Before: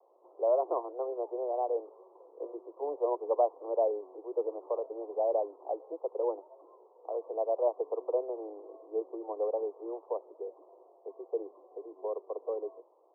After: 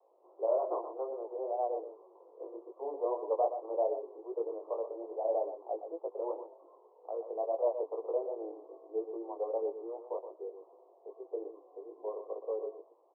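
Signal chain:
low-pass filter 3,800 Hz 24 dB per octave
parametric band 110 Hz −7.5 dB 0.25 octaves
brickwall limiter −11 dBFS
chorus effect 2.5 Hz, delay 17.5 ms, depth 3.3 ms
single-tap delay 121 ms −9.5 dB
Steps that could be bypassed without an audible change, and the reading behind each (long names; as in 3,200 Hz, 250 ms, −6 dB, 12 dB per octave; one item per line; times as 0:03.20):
low-pass filter 3,800 Hz: nothing at its input above 1,100 Hz
parametric band 110 Hz: nothing at its input below 290 Hz
brickwall limiter −11 dBFS: peak of its input −16.0 dBFS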